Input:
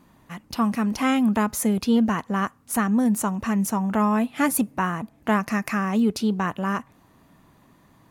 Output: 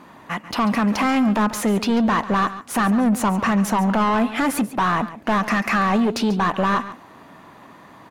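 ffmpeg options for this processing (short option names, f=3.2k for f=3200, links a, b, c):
-filter_complex "[0:a]asplit=2[a][b];[b]highpass=f=720:p=1,volume=24dB,asoftclip=type=tanh:threshold=-8dB[c];[a][c]amix=inputs=2:normalize=0,lowpass=f=1.7k:p=1,volume=-6dB,alimiter=limit=-13.5dB:level=0:latency=1,aecho=1:1:140:0.188"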